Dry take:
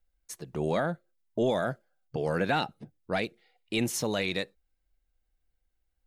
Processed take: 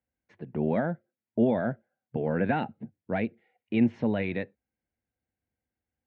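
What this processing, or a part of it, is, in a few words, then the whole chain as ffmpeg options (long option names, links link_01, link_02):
bass cabinet: -af "highpass=frequency=82:width=0.5412,highpass=frequency=82:width=1.3066,equalizer=frequency=100:width_type=q:width=4:gain=7,equalizer=frequency=230:width_type=q:width=4:gain=10,equalizer=frequency=1200:width_type=q:width=4:gain=-10,lowpass=frequency=2300:width=0.5412,lowpass=frequency=2300:width=1.3066"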